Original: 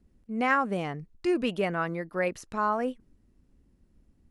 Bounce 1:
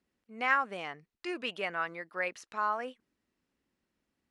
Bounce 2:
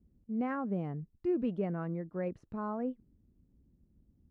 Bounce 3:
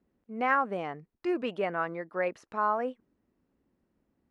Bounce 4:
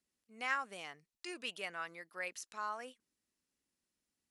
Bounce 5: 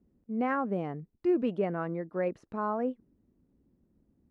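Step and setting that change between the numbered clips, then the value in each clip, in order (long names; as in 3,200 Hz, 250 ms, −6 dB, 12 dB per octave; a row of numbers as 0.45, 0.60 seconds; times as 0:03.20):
resonant band-pass, frequency: 2,500, 120, 870, 7,500, 300 Hertz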